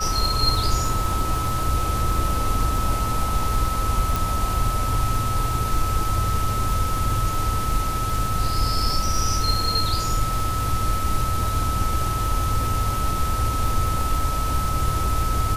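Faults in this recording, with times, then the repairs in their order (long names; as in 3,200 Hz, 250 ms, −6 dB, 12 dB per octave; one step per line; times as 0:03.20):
surface crackle 23 per second −27 dBFS
whistle 1,300 Hz −26 dBFS
0:04.16: click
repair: click removal
notch filter 1,300 Hz, Q 30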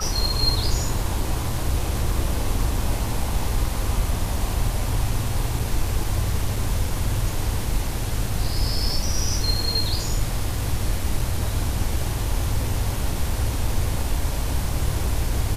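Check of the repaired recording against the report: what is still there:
none of them is left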